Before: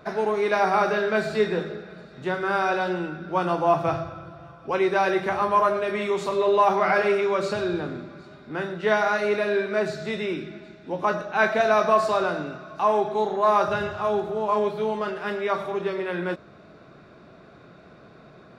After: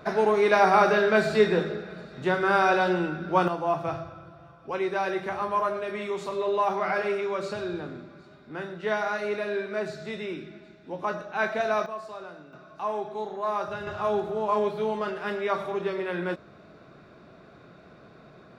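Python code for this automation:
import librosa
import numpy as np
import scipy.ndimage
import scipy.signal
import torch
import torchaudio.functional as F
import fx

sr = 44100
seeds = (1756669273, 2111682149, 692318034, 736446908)

y = fx.gain(x, sr, db=fx.steps((0.0, 2.0), (3.48, -6.0), (11.86, -17.0), (12.53, -9.0), (13.87, -2.0)))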